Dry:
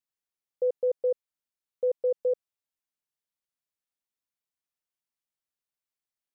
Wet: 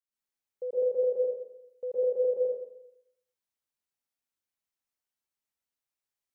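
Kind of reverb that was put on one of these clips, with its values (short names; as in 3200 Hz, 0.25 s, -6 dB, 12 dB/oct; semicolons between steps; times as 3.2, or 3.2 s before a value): plate-style reverb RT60 0.79 s, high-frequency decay 0.85×, pre-delay 0.105 s, DRR -9.5 dB; gain -9.5 dB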